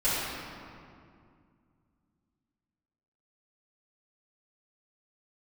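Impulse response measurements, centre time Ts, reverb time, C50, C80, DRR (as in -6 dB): 154 ms, 2.3 s, -4.0 dB, -1.5 dB, -14.0 dB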